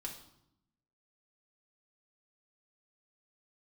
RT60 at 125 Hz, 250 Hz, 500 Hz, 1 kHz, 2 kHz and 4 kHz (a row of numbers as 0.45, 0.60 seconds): 1.2, 1.2, 0.80, 0.75, 0.60, 0.65 seconds